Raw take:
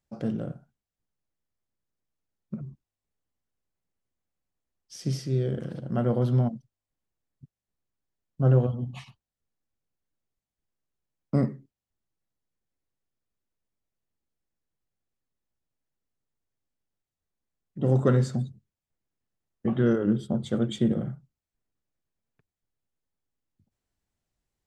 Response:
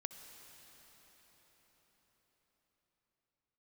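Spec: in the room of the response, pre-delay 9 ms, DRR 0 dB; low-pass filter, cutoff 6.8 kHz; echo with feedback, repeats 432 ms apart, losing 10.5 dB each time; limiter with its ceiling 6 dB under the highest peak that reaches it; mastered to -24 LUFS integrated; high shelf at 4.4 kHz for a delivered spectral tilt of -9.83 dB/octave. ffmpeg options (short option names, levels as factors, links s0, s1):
-filter_complex "[0:a]lowpass=6800,highshelf=f=4400:g=-6.5,alimiter=limit=0.15:level=0:latency=1,aecho=1:1:432|864|1296:0.299|0.0896|0.0269,asplit=2[s0][s1];[1:a]atrim=start_sample=2205,adelay=9[s2];[s1][s2]afir=irnorm=-1:irlink=0,volume=1.33[s3];[s0][s3]amix=inputs=2:normalize=0,volume=1.26"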